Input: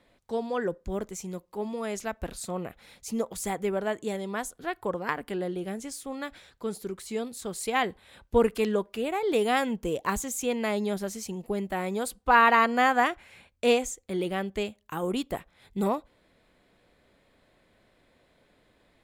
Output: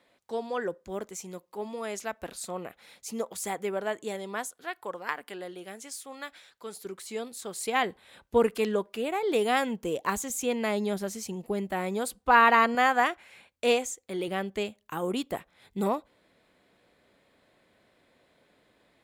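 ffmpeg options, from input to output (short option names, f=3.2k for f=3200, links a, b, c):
-af "asetnsamples=n=441:p=0,asendcmd='4.47 highpass f 980;6.85 highpass f 420;7.6 highpass f 190;10.3 highpass f 81;12.75 highpass f 330;14.28 highpass f 150',highpass=f=380:p=1"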